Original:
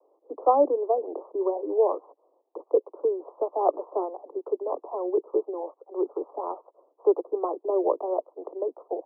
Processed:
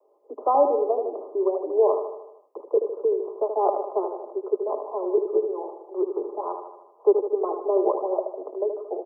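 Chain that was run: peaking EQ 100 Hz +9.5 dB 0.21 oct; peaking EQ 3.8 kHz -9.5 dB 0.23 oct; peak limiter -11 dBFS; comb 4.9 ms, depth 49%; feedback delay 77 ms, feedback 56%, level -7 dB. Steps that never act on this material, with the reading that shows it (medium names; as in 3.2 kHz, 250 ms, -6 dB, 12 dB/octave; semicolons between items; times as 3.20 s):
peaking EQ 100 Hz: input has nothing below 270 Hz; peaking EQ 3.8 kHz: input has nothing above 1.2 kHz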